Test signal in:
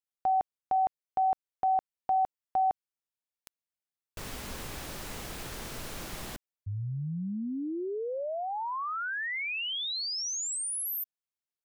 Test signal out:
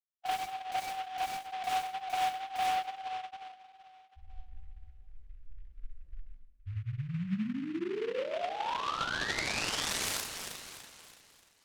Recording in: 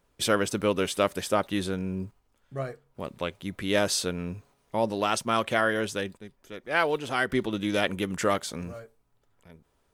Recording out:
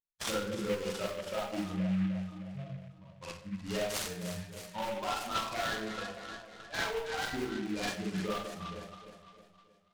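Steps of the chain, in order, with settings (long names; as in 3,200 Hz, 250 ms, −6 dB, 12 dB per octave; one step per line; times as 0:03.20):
spectral dynamics exaggerated over time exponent 3
low-shelf EQ 390 Hz −7 dB
delay that swaps between a low-pass and a high-pass 155 ms, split 870 Hz, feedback 67%, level −11 dB
tape wow and flutter 22 cents
downsampling to 11,025 Hz
mains-hum notches 60/120/180 Hz
in parallel at −9 dB: wrap-around overflow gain 27.5 dB
on the sum: downward compressor 2.5 to 1, threshold −42 dBFS
low-shelf EQ 120 Hz +7.5 dB
four-comb reverb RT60 0.44 s, combs from 33 ms, DRR −5 dB
short delay modulated by noise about 1,900 Hz, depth 0.068 ms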